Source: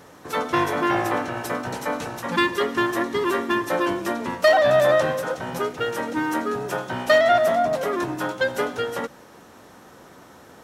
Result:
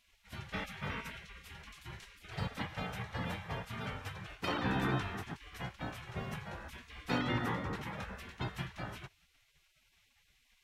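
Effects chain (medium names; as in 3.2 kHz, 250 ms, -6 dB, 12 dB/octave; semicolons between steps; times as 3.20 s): spectral gate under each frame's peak -20 dB weak; tone controls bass +12 dB, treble -14 dB; trim -5 dB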